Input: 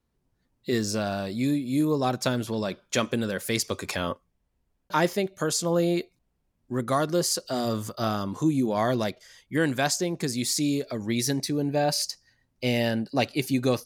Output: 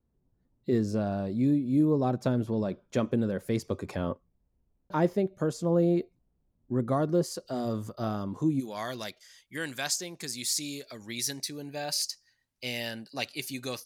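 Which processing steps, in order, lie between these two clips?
tilt shelving filter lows +9.5 dB, about 1,200 Hz, from 0:07.23 lows +5.5 dB, from 0:08.59 lows −6.5 dB
level −8 dB

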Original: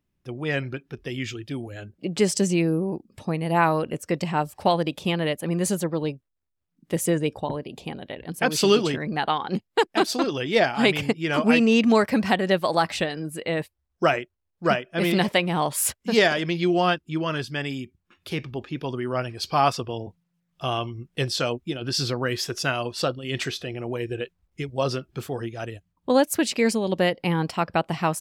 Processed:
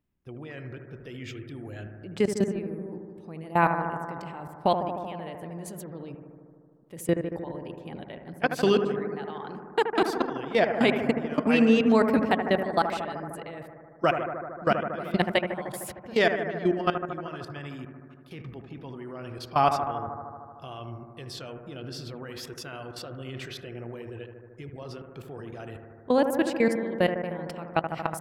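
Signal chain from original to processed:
parametric band 6,300 Hz −7 dB 1.8 octaves
output level in coarse steps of 20 dB
bucket-brigade delay 76 ms, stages 1,024, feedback 79%, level −8 dB

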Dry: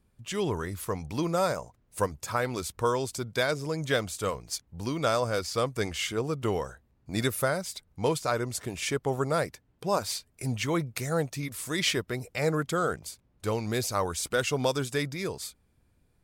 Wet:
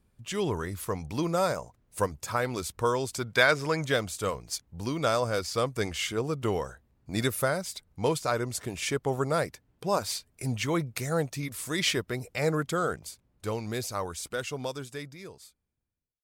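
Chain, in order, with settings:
fade-out on the ending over 3.73 s
0:03.12–0:03.84: parametric band 1,700 Hz +4.5 dB → +14.5 dB 2.3 octaves

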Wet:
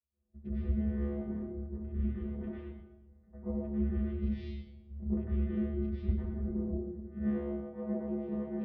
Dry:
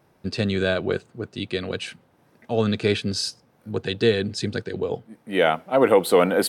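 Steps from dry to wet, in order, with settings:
adaptive Wiener filter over 15 samples
camcorder AGC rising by 9.4 dB per second
low-shelf EQ 360 Hz −4.5 dB
downward compressor 4 to 1, threshold −36 dBFS, peak gain reduction 19 dB
tape delay 280 ms, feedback 65%, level −14.5 dB, low-pass 1,100 Hz
channel vocoder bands 8, square 95 Hz
notch comb filter 360 Hz
speed change −25%
high-frequency loss of the air 490 metres
convolution reverb RT60 1.5 s, pre-delay 97 ms, DRR −11.5 dB
multiband upward and downward expander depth 70%
level −8.5 dB

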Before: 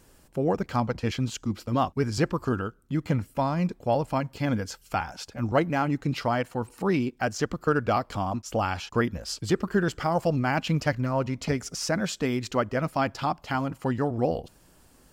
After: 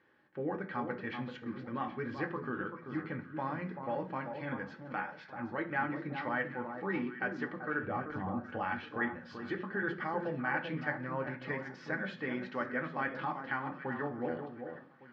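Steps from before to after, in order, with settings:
0:07.83–0:08.50: spectral tilt −4 dB per octave
brickwall limiter −16.5 dBFS, peak gain reduction 8 dB
loudspeaker in its box 270–2,800 Hz, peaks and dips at 280 Hz −4 dB, 450 Hz −6 dB, 700 Hz −9 dB, 1,100 Hz −3 dB, 1,800 Hz +6 dB, 2,700 Hz −7 dB
delay that swaps between a low-pass and a high-pass 386 ms, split 1,300 Hz, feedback 51%, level −7 dB
on a send at −1.5 dB: convolution reverb RT60 0.45 s, pre-delay 3 ms
on the sum: level −6.5 dB

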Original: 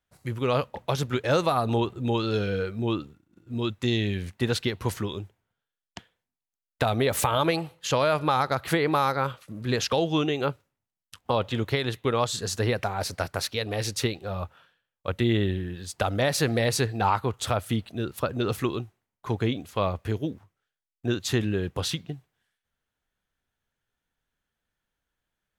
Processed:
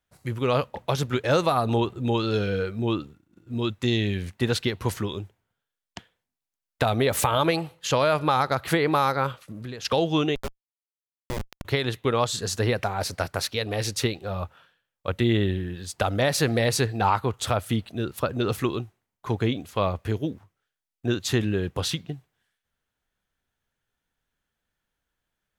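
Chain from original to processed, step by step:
0:09.37–0:09.85: downward compressor 10 to 1, threshold −35 dBFS, peak gain reduction 14.5 dB
0:10.35–0:11.65: comparator with hysteresis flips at −21 dBFS
level +1.5 dB

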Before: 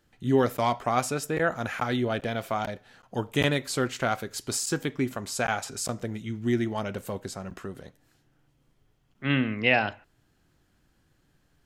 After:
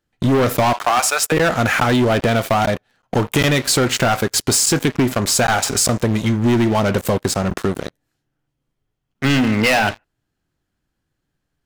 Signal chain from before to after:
0:00.73–0:01.32: high-pass filter 680 Hz 24 dB per octave
leveller curve on the samples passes 5
downward compressor, threshold −15 dBFS, peak gain reduction 6 dB
level +1.5 dB

